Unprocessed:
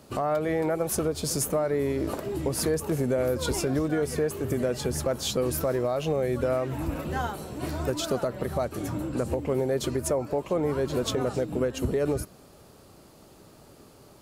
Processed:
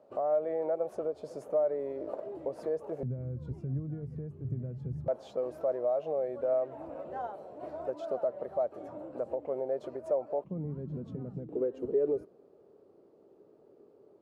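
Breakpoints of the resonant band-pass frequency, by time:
resonant band-pass, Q 3.4
590 Hz
from 0:03.03 130 Hz
from 0:05.08 620 Hz
from 0:10.44 170 Hz
from 0:11.49 420 Hz

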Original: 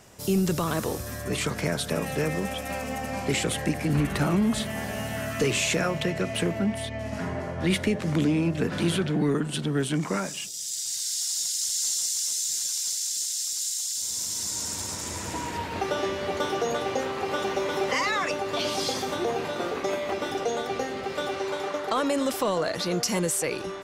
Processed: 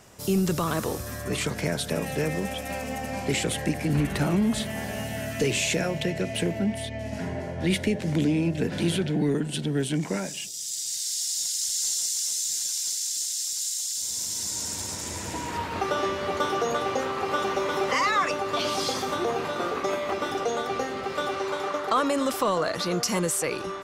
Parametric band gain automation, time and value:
parametric band 1,200 Hz 0.42 octaves
+2 dB
from 0:01.43 −5.5 dB
from 0:05.04 −13 dB
from 0:11.42 −3.5 dB
from 0:15.49 +6.5 dB

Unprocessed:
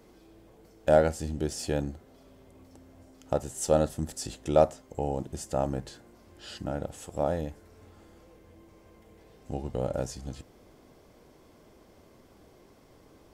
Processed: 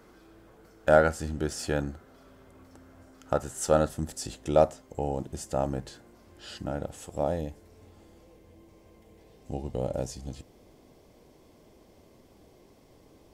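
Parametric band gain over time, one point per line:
parametric band 1,400 Hz 0.7 octaves
0:03.69 +10 dB
0:04.10 +1 dB
0:06.95 +1 dB
0:07.45 −6.5 dB

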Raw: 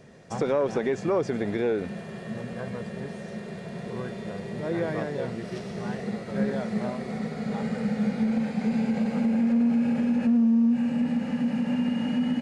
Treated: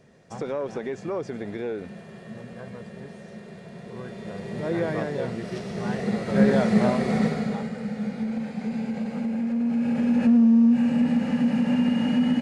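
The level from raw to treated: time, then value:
0:03.87 −5 dB
0:04.60 +2 dB
0:05.66 +2 dB
0:06.54 +9 dB
0:07.26 +9 dB
0:07.72 −3.5 dB
0:09.55 −3.5 dB
0:10.23 +4 dB

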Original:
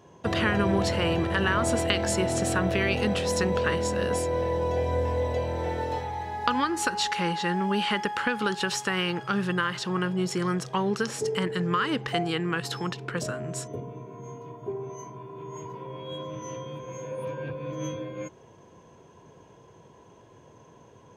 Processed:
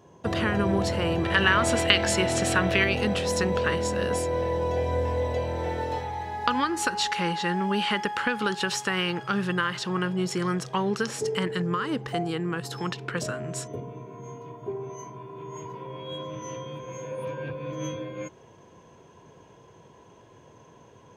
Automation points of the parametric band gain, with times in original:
parametric band 2,600 Hz 2.2 octaves
−3 dB
from 0:01.25 +7.5 dB
from 0:02.84 +1 dB
from 0:11.62 −6.5 dB
from 0:12.78 +2.5 dB

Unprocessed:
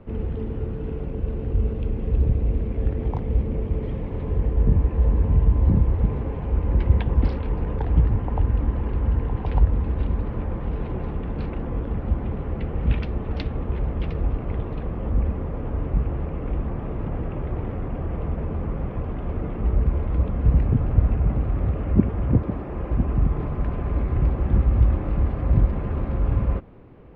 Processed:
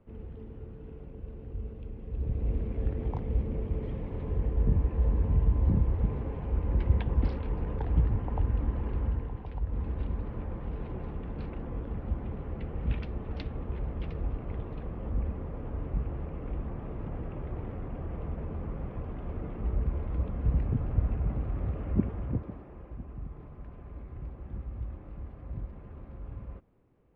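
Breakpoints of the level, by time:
0:02.08 −15.5 dB
0:02.49 −7 dB
0:09.01 −7 dB
0:09.60 −16.5 dB
0:09.79 −9 dB
0:22.05 −9 dB
0:23.00 −20 dB

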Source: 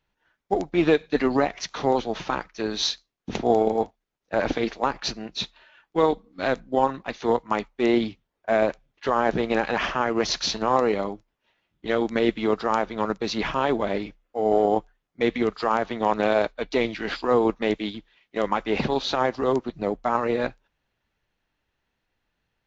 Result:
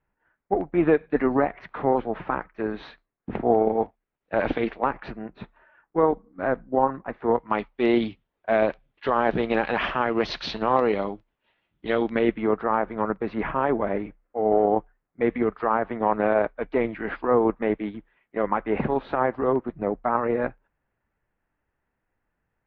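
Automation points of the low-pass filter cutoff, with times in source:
low-pass filter 24 dB per octave
0:03.58 2,000 Hz
0:04.49 3,200 Hz
0:05.34 1,700 Hz
0:07.25 1,700 Hz
0:07.66 3,600 Hz
0:12.01 3,600 Hz
0:12.46 2,000 Hz

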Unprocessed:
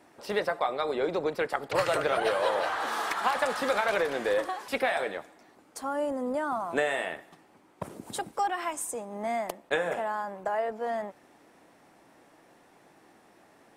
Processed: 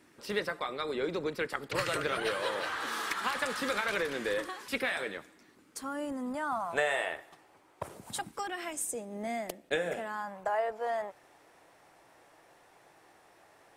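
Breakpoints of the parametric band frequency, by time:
parametric band −13 dB 0.98 octaves
0:06.04 720 Hz
0:07.02 210 Hz
0:07.86 210 Hz
0:08.57 1,000 Hz
0:09.98 1,000 Hz
0:10.52 230 Hz

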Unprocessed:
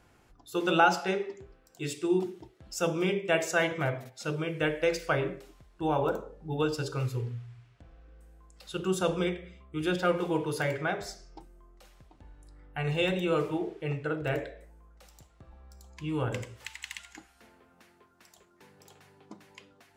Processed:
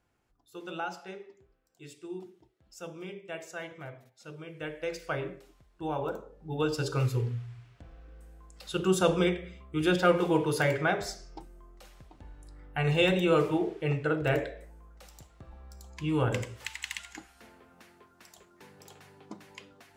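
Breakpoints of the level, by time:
0:04.23 −13.5 dB
0:05.15 −5 dB
0:06.30 −5 dB
0:06.94 +3.5 dB

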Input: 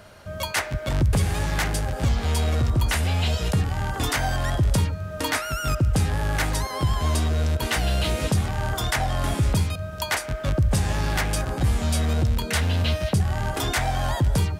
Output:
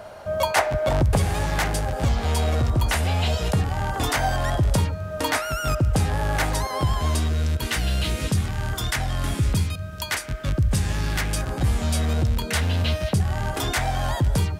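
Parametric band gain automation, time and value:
parametric band 710 Hz 1.3 octaves
0:00.84 +12.5 dB
0:01.35 +4.5 dB
0:06.85 +4.5 dB
0:07.40 −6.5 dB
0:11.17 −6.5 dB
0:11.62 0 dB

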